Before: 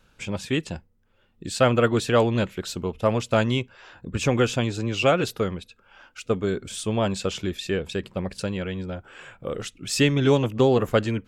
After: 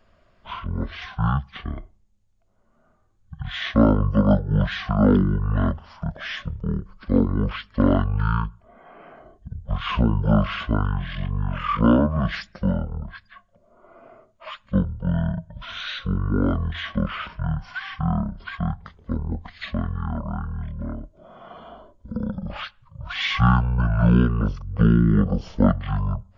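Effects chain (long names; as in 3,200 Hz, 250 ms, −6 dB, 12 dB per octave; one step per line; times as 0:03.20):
wrong playback speed 78 rpm record played at 33 rpm
level +1.5 dB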